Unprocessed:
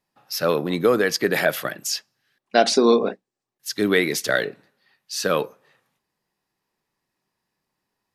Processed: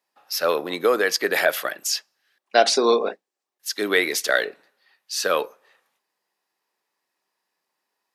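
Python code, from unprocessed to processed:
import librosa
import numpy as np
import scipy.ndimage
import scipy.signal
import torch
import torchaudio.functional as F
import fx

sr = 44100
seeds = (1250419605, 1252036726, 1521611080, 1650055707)

y = scipy.signal.sosfilt(scipy.signal.butter(2, 450.0, 'highpass', fs=sr, output='sos'), x)
y = y * 10.0 ** (1.5 / 20.0)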